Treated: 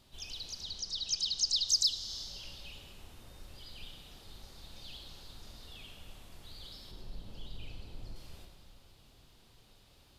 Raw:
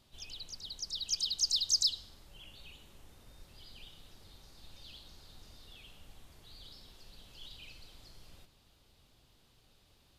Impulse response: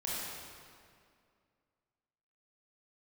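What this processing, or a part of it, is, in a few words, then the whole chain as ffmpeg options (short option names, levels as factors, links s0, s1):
ducked reverb: -filter_complex "[0:a]asettb=1/sr,asplit=3[s0][s1][s2];[s0]atrim=end=0.634[s3];[s1]atrim=start=0.63:end=1.68,asetpts=PTS-STARTPTS,afade=t=in:d=0.004:c=qsin,afade=t=out:st=1.046:d=0.004:c=qsin,lowpass=7200[s4];[s2]atrim=start=1.676[s5];[s3][s4]acrossfade=d=0.004:c1=hsin:c2=qsin[s6];[s6][s5]acrossfade=d=0.004:c1=qsin:c2=hsin,asettb=1/sr,asplit=3[s7][s8][s9];[s7]atrim=end=6.914[s10];[s8]atrim=start=6.91:end=8.16,asetpts=PTS-STARTPTS,afade=t=in:d=0.004:c=qsin,afade=t=out:st=1.246:d=0.004:c=qsin,tiltshelf=f=890:g=7.5[s11];[s9]atrim=start=8.156[s12];[s10][s11]acrossfade=d=0.004:c1=hsin:c2=qsin[s13];[s13][s12]acrossfade=d=0.004:c1=qsin:c2=hsin,asplit=3[s14][s15][s16];[1:a]atrim=start_sample=2205[s17];[s15][s17]afir=irnorm=-1:irlink=0[s18];[s16]apad=whole_len=449166[s19];[s18][s19]sidechaincompress=threshold=0.00708:ratio=3:attack=16:release=254,volume=0.596[s20];[s14][s20]amix=inputs=2:normalize=0"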